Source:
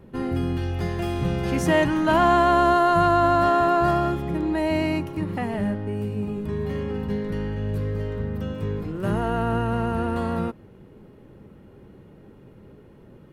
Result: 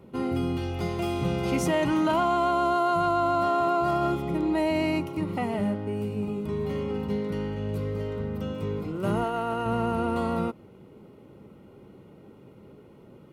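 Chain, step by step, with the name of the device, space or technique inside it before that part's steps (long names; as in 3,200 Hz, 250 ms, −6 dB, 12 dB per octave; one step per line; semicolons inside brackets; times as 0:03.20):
PA system with an anti-feedback notch (high-pass filter 150 Hz 6 dB per octave; Butterworth band-reject 1,700 Hz, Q 4.8; brickwall limiter −15.5 dBFS, peak gain reduction 7 dB)
0:09.24–0:09.66: low-shelf EQ 240 Hz −11 dB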